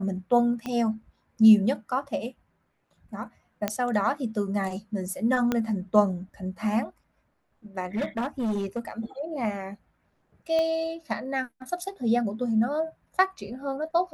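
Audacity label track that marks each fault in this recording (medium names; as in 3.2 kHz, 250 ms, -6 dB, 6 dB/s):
0.660000	0.660000	pop -19 dBFS
3.680000	3.680000	pop -10 dBFS
5.520000	5.520000	pop -12 dBFS
7.950000	8.910000	clipped -24 dBFS
10.590000	10.590000	pop -18 dBFS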